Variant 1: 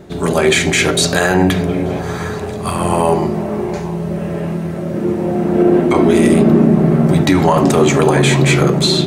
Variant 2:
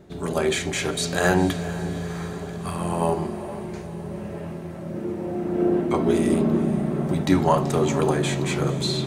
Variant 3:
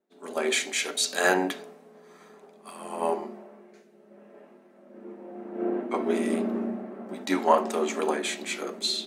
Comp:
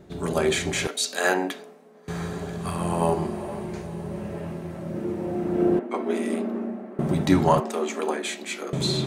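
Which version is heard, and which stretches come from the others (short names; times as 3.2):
2
0.87–2.08 from 3
5.79–6.99 from 3
7.6–8.73 from 3
not used: 1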